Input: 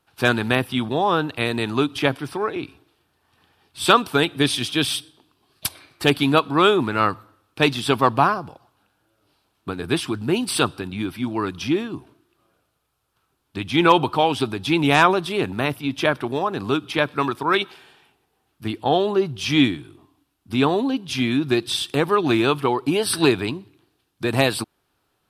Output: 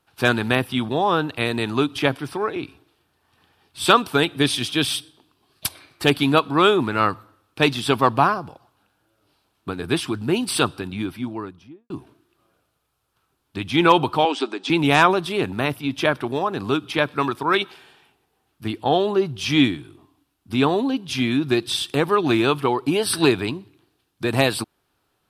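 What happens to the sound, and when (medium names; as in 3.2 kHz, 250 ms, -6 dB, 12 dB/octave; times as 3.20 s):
10.91–11.90 s: studio fade out
14.25–14.70 s: elliptic band-pass 290–7700 Hz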